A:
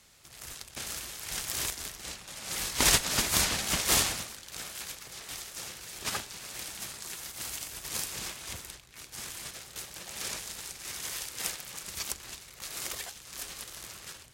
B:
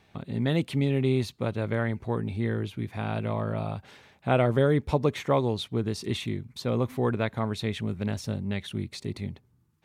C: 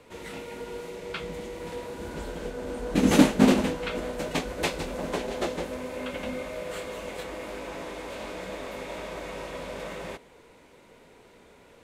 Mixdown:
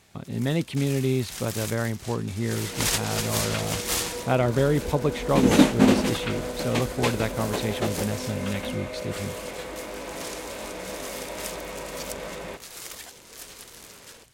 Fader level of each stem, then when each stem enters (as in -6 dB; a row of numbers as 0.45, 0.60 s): -2.0, +0.5, +1.0 dB; 0.00, 0.00, 2.40 s